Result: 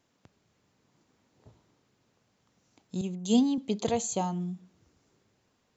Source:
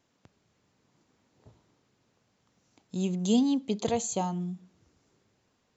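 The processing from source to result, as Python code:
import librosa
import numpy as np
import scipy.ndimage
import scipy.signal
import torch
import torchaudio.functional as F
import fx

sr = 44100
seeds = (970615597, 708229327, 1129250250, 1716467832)

y = fx.band_widen(x, sr, depth_pct=100, at=(3.01, 3.58))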